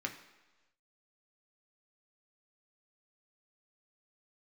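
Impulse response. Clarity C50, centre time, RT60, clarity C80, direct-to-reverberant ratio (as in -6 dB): 10.5 dB, 15 ms, 1.2 s, 12.5 dB, 2.5 dB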